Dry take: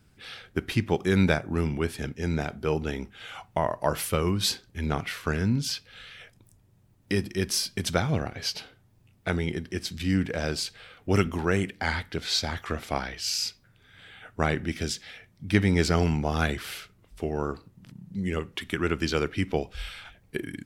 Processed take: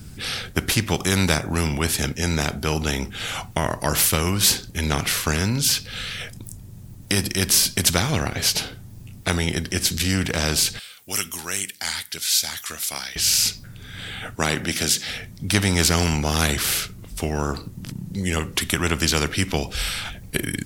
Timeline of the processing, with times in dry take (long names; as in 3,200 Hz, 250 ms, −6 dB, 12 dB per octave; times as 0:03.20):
0:10.79–0:13.16: first difference
0:14.35–0:15.09: Bessel high-pass filter 230 Hz
whole clip: bass and treble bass +13 dB, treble +10 dB; every bin compressed towards the loudest bin 2 to 1; level −1 dB